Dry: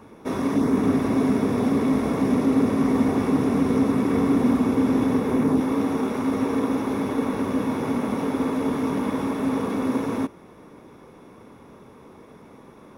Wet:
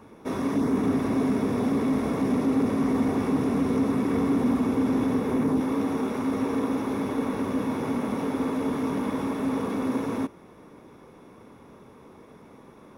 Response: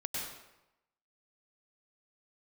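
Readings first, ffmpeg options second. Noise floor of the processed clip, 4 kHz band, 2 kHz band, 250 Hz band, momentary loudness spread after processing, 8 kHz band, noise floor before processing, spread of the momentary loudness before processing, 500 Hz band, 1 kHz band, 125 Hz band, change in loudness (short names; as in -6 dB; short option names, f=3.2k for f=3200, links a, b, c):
-50 dBFS, -3.0 dB, -3.0 dB, -3.5 dB, 4 LU, -3.0 dB, -48 dBFS, 5 LU, -3.0 dB, -3.0 dB, -3.5 dB, -3.5 dB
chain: -af "asoftclip=type=tanh:threshold=-11.5dB,volume=-2.5dB"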